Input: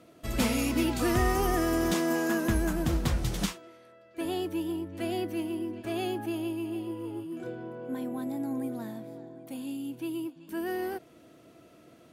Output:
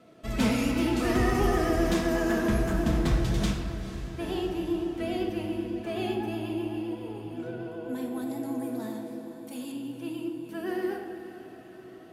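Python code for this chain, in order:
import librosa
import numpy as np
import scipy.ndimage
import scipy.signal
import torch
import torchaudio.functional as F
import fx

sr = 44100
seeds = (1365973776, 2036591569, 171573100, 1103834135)

y = fx.bass_treble(x, sr, bass_db=-4, treble_db=10, at=(7.59, 9.72))
y = fx.echo_diffused(y, sr, ms=480, feedback_pct=63, wet_db=-13)
y = fx.vibrato(y, sr, rate_hz=7.9, depth_cents=48.0)
y = fx.high_shelf(y, sr, hz=9000.0, db=-11.0)
y = fx.room_shoebox(y, sr, seeds[0], volume_m3=1300.0, walls='mixed', distance_m=1.5)
y = y * 10.0 ** (-1.0 / 20.0)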